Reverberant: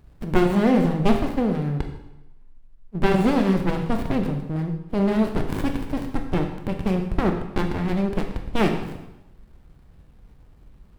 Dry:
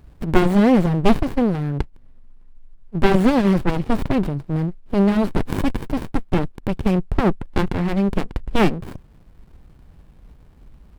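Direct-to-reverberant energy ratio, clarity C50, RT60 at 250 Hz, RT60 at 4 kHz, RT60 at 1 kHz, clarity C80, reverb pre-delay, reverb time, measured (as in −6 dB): 4.0 dB, 7.0 dB, 0.90 s, 0.85 s, 0.90 s, 9.0 dB, 8 ms, 0.95 s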